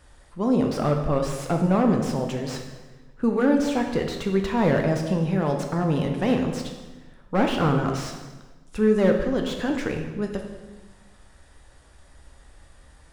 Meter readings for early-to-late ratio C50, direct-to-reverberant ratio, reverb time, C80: 5.5 dB, 3.0 dB, 1.2 s, 8.0 dB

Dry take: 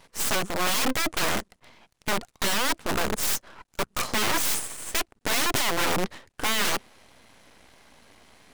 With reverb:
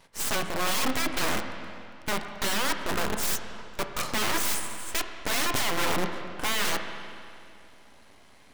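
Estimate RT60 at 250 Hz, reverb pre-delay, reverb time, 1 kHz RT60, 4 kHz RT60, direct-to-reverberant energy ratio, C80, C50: 2.5 s, 24 ms, 2.5 s, 2.5 s, 2.3 s, 5.5 dB, 7.5 dB, 6.5 dB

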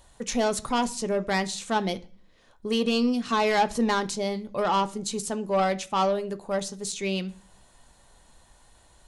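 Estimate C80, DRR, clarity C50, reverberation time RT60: 25.0 dB, 9.0 dB, 20.0 dB, 0.45 s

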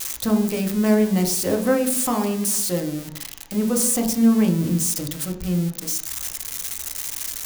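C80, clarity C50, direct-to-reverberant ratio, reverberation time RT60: 12.0 dB, 9.0 dB, 2.5 dB, 0.70 s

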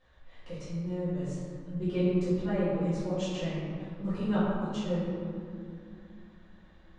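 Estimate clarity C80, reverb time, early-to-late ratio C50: −0.5 dB, 2.5 s, −2.5 dB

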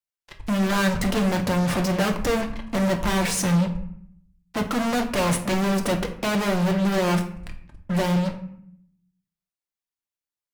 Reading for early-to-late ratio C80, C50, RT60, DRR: 13.5 dB, 10.5 dB, 0.65 s, 3.5 dB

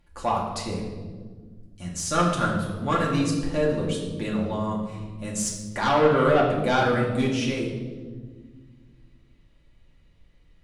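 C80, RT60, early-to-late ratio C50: 5.5 dB, 1.6 s, 3.5 dB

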